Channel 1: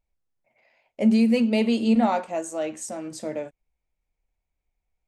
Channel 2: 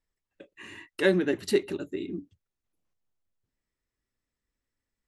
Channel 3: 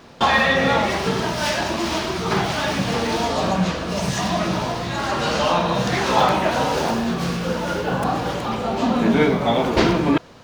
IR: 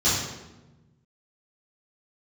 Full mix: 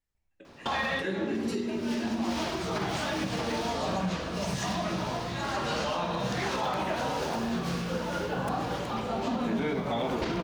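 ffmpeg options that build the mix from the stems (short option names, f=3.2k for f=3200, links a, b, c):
-filter_complex "[0:a]acompressor=threshold=-30dB:ratio=6,lowpass=3.9k,adelay=150,volume=-0.5dB,asplit=2[a][b];[b]volume=-24dB[c];[1:a]volume=-4dB,asplit=3[d][e][f];[e]volume=-20dB[g];[2:a]adelay=450,volume=-8dB[h];[f]apad=whole_len=479904[i];[h][i]sidechaincompress=threshold=-39dB:ratio=8:attack=16:release=611[j];[a][d]amix=inputs=2:normalize=0,acompressor=threshold=-34dB:ratio=6,volume=0dB[k];[3:a]atrim=start_sample=2205[l];[c][g]amix=inputs=2:normalize=0[m];[m][l]afir=irnorm=-1:irlink=0[n];[j][k][n]amix=inputs=3:normalize=0,alimiter=limit=-21dB:level=0:latency=1:release=91"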